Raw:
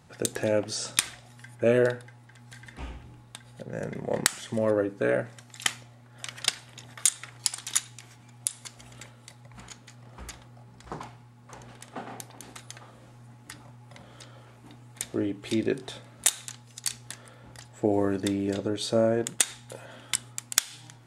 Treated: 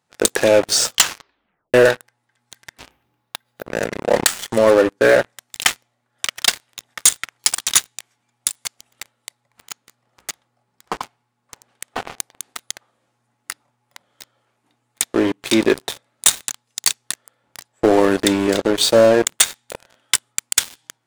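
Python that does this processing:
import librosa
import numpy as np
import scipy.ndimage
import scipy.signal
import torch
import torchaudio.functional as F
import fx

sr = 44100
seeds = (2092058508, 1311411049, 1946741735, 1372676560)

y = fx.resample_bad(x, sr, factor=3, down='filtered', up='hold', at=(2.91, 3.66))
y = fx.edit(y, sr, fx.tape_stop(start_s=0.86, length_s=0.88), tone=tone)
y = fx.highpass(y, sr, hz=500.0, slope=6)
y = fx.leveller(y, sr, passes=5)
y = y * 10.0 ** (-1.5 / 20.0)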